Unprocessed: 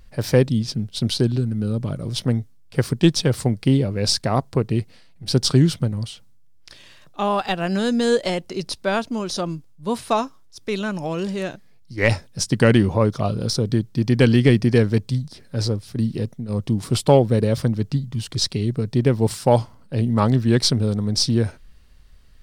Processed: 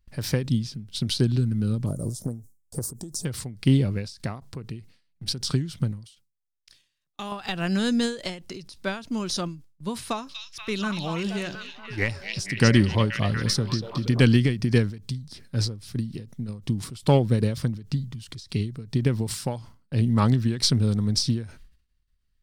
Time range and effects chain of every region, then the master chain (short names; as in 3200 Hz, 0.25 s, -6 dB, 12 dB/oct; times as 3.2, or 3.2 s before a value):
1.86–3.25 EQ curve 170 Hz 0 dB, 610 Hz +7 dB, 1000 Hz -1 dB, 2700 Hz -25 dB, 7100 Hz +13 dB + compressor, threshold -17 dBFS
6.04–7.32 gate -39 dBFS, range -13 dB + high shelf 3500 Hz +10 dB + compressor 3:1, threshold -29 dBFS
10.05–14.21 de-hum 187.6 Hz, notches 3 + delay with a stepping band-pass 0.239 s, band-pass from 3900 Hz, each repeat -0.7 oct, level -1 dB
whole clip: gate with hold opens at -38 dBFS; bell 590 Hz -8 dB 1.7 oct; ending taper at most 120 dB/s